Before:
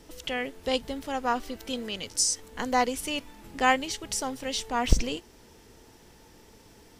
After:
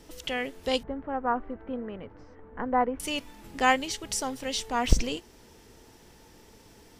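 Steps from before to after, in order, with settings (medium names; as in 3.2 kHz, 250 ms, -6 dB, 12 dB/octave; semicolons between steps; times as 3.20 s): 0.83–3.00 s: low-pass 1.6 kHz 24 dB/octave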